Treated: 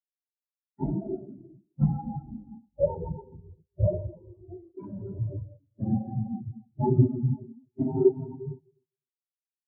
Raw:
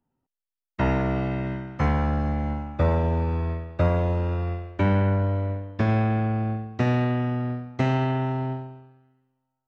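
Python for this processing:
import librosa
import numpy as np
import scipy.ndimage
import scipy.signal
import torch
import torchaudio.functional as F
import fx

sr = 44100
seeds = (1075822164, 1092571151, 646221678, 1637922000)

y = fx.phase_scramble(x, sr, seeds[0], window_ms=50)
y = fx.peak_eq(y, sr, hz=79.0, db=-13.5, octaves=0.58)
y = fx.hum_notches(y, sr, base_hz=60, count=3)
y = fx.small_body(y, sr, hz=(380.0, 850.0), ring_ms=75, db=8)
y = fx.quant_companded(y, sr, bits=2, at=(4.48, 5.34))
y = fx.air_absorb(y, sr, metres=63.0)
y = fx.echo_feedback(y, sr, ms=254, feedback_pct=47, wet_db=-10.5)
y = fx.spectral_expand(y, sr, expansion=4.0)
y = y * librosa.db_to_amplitude(-7.5)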